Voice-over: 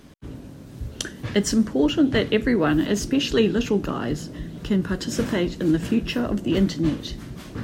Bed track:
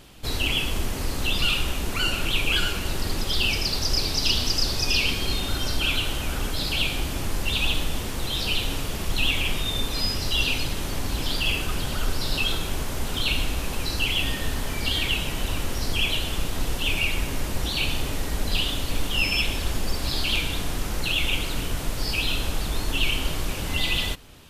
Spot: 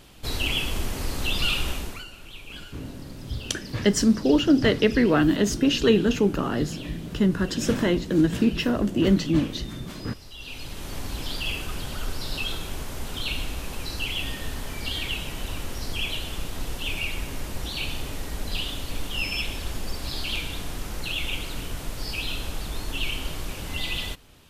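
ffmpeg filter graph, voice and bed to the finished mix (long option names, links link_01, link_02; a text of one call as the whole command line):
ffmpeg -i stem1.wav -i stem2.wav -filter_complex "[0:a]adelay=2500,volume=0.5dB[link_01];[1:a]volume=12dB,afade=type=out:start_time=1.71:duration=0.34:silence=0.141254,afade=type=in:start_time=10.39:duration=0.58:silence=0.211349[link_02];[link_01][link_02]amix=inputs=2:normalize=0" out.wav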